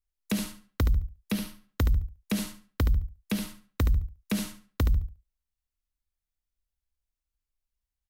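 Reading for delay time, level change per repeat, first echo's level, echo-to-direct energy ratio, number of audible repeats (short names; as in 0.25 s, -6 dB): 72 ms, -14.5 dB, -8.0 dB, -8.0 dB, 2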